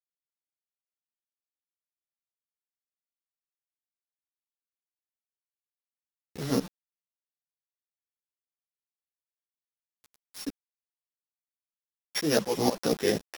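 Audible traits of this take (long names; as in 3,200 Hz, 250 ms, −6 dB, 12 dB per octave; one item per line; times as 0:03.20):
a buzz of ramps at a fixed pitch in blocks of 8 samples
tremolo saw up 4.1 Hz, depth 95%
a quantiser's noise floor 8 bits, dither none
a shimmering, thickened sound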